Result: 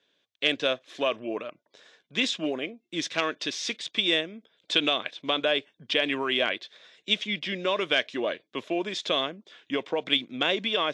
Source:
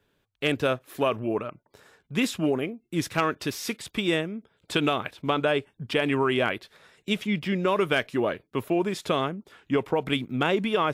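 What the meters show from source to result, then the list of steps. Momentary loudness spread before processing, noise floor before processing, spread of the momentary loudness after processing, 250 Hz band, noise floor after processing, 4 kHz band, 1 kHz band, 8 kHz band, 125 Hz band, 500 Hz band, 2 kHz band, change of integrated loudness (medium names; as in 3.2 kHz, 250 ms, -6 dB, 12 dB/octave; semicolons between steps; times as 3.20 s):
8 LU, -74 dBFS, 9 LU, -6.0 dB, -77 dBFS, +7.0 dB, -4.5 dB, -0.5 dB, -13.5 dB, -3.0 dB, +1.0 dB, -0.5 dB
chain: cabinet simulation 370–6600 Hz, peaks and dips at 410 Hz -6 dB, 860 Hz -9 dB, 1.3 kHz -8 dB, 3.5 kHz +8 dB, 6.1 kHz +3 dB; trim +1.5 dB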